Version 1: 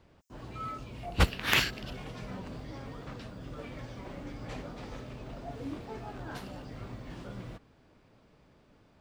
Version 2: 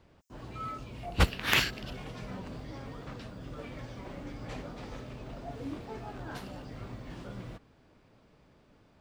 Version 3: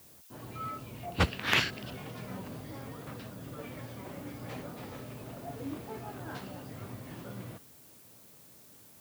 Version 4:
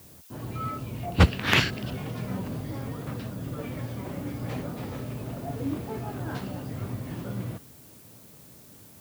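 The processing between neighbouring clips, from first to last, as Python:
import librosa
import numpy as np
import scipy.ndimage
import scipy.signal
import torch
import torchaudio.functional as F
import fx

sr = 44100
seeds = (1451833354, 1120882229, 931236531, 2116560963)

y1 = x
y2 = scipy.signal.sosfilt(scipy.signal.butter(4, 78.0, 'highpass', fs=sr, output='sos'), y1)
y2 = fx.high_shelf(y2, sr, hz=9100.0, db=-11.5)
y2 = fx.dmg_noise_colour(y2, sr, seeds[0], colour='blue', level_db=-57.0)
y3 = fx.low_shelf(y2, sr, hz=310.0, db=8.0)
y3 = F.gain(torch.from_numpy(y3), 4.0).numpy()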